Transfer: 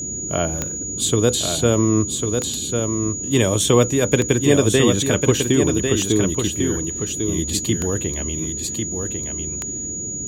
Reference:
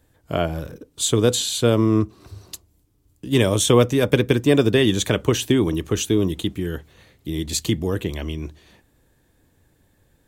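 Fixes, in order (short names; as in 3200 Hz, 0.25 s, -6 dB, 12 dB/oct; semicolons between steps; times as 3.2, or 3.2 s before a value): de-click; notch 6800 Hz, Q 30; noise print and reduce 30 dB; inverse comb 1.098 s -5.5 dB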